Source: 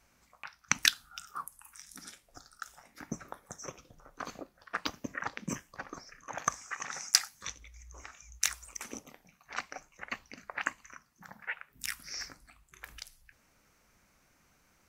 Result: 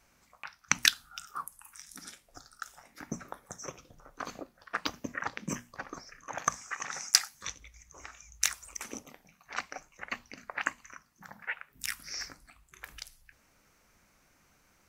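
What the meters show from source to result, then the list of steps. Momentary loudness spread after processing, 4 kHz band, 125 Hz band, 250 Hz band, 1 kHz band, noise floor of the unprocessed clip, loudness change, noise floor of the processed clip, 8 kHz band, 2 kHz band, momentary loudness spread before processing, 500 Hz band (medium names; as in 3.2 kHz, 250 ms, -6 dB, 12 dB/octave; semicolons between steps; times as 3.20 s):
23 LU, +1.5 dB, +0.5 dB, +1.0 dB, +1.5 dB, -69 dBFS, +1.5 dB, -67 dBFS, +1.5 dB, +1.5 dB, 23 LU, +1.5 dB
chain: hum notches 60/120/180/240 Hz; trim +1.5 dB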